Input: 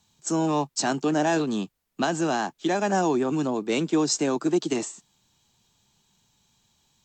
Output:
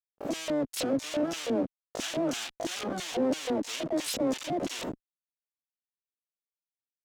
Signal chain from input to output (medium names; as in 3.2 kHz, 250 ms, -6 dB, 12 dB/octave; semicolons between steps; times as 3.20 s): in parallel at +2 dB: compression 8:1, threshold -34 dBFS, peak gain reduction 15.5 dB; on the sum: comb of notches 200 Hz; Schmitt trigger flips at -31 dBFS; LFO band-pass square 3 Hz 270–3200 Hz; harmony voices +12 st -1 dB